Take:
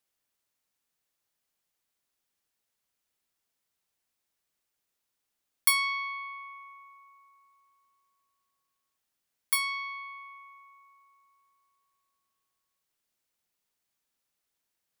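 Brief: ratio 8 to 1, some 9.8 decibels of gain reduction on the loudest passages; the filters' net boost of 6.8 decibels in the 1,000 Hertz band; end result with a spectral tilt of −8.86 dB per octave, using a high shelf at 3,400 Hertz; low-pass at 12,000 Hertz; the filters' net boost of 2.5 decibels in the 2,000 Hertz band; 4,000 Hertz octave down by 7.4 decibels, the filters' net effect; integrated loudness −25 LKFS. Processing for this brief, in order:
low-pass filter 12,000 Hz
parametric band 1,000 Hz +7 dB
parametric band 2,000 Hz +5.5 dB
high-shelf EQ 3,400 Hz −6.5 dB
parametric band 4,000 Hz −6.5 dB
downward compressor 8 to 1, threshold −30 dBFS
level +10.5 dB

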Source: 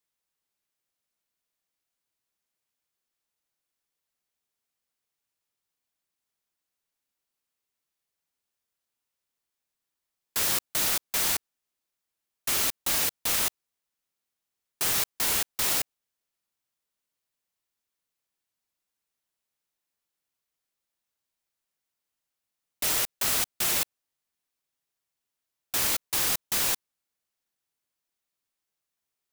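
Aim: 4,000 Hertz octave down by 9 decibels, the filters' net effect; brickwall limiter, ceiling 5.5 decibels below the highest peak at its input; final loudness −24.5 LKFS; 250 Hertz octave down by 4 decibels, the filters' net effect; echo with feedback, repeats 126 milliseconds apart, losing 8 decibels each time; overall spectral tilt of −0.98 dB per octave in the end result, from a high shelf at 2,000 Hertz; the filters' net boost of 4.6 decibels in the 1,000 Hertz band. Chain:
parametric band 250 Hz −6 dB
parametric band 1,000 Hz +8 dB
high-shelf EQ 2,000 Hz −6 dB
parametric band 4,000 Hz −6 dB
brickwall limiter −22 dBFS
repeating echo 126 ms, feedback 40%, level −8 dB
level +8 dB

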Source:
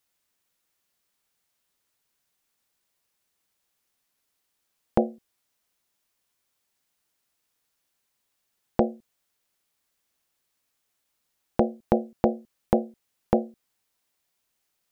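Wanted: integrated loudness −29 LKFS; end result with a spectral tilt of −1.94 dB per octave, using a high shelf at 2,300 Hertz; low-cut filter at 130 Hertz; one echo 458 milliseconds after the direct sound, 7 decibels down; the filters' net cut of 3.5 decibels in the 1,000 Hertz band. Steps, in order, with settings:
high-pass filter 130 Hz
parametric band 1,000 Hz −5 dB
high-shelf EQ 2,300 Hz −3 dB
single-tap delay 458 ms −7 dB
level +1 dB

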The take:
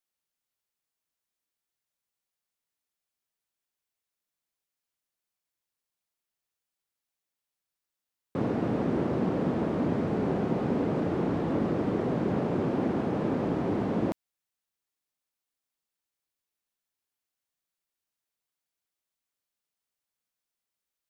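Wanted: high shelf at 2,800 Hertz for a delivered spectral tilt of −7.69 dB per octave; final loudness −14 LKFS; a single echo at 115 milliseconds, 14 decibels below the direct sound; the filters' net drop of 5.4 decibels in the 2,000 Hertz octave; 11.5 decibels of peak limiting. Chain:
parametric band 2,000 Hz −4.5 dB
high-shelf EQ 2,800 Hz −7.5 dB
brickwall limiter −27 dBFS
single-tap delay 115 ms −14 dB
level +21 dB

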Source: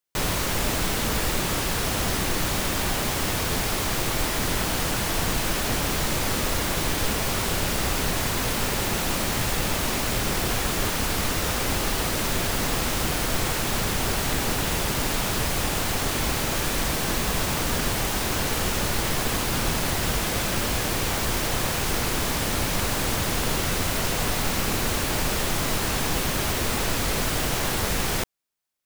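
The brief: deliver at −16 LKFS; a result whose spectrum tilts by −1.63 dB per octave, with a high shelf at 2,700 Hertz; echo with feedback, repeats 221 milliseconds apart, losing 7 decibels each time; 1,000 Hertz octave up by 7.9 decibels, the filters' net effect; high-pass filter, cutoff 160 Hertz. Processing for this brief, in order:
high-pass filter 160 Hz
parametric band 1,000 Hz +9 dB
high-shelf EQ 2,700 Hz +6 dB
repeating echo 221 ms, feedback 45%, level −7 dB
level +3 dB

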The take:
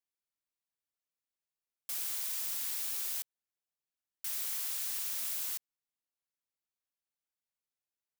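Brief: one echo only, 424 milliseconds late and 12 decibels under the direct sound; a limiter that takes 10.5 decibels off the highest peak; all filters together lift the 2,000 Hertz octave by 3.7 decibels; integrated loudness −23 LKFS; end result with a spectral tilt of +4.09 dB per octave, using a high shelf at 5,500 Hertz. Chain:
parametric band 2,000 Hz +3.5 dB
high-shelf EQ 5,500 Hz +7.5 dB
brickwall limiter −26.5 dBFS
single-tap delay 424 ms −12 dB
level +10.5 dB

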